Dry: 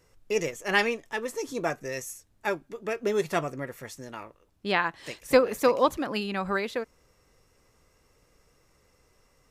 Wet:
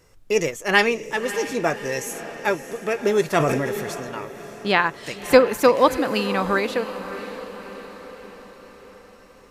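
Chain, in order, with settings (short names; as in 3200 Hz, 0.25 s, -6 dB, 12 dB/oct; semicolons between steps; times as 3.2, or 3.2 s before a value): diffused feedback echo 0.6 s, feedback 56%, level -12.5 dB; 3.37–4 sustainer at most 25 dB/s; gain +6.5 dB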